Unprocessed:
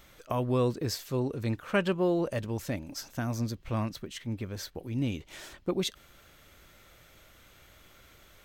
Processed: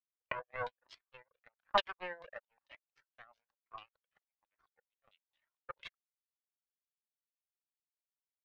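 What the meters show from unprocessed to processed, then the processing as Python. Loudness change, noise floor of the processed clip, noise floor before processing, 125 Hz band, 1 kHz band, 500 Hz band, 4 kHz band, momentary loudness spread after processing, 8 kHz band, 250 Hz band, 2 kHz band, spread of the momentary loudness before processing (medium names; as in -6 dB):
-7.5 dB, under -85 dBFS, -58 dBFS, -32.0 dB, -2.5 dB, -14.0 dB, -6.5 dB, 21 LU, under -25 dB, -31.5 dB, -5.0 dB, 10 LU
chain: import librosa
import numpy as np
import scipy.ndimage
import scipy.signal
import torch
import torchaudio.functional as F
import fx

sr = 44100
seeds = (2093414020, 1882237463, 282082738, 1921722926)

y = scipy.signal.sosfilt(scipy.signal.butter(16, 470.0, 'highpass', fs=sr, output='sos'), x)
y = fx.high_shelf(y, sr, hz=11000.0, db=-7.0)
y = fx.power_curve(y, sr, exponent=3.0)
y = fx.filter_lfo_lowpass(y, sr, shape='saw_down', hz=4.5, low_hz=920.0, high_hz=3900.0, q=3.8)
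y = fx.comb_cascade(y, sr, direction='rising', hz=1.1)
y = y * librosa.db_to_amplitude(7.5)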